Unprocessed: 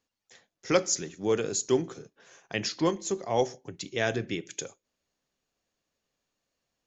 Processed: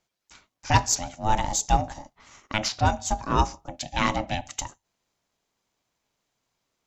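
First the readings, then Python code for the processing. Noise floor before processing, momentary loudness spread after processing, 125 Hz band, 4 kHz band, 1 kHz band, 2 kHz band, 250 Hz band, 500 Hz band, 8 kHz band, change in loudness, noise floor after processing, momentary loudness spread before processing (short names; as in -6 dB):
under -85 dBFS, 13 LU, +9.5 dB, +4.5 dB, +12.0 dB, +4.0 dB, -0.5 dB, -6.0 dB, n/a, +3.5 dB, -82 dBFS, 14 LU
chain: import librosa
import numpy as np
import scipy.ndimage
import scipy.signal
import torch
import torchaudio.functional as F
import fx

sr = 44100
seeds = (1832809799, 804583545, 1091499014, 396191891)

y = fx.cheby_harmonics(x, sr, harmonics=(6,), levels_db=(-32,), full_scale_db=-9.5)
y = y * np.sin(2.0 * np.pi * 430.0 * np.arange(len(y)) / sr)
y = y * librosa.db_to_amplitude(7.0)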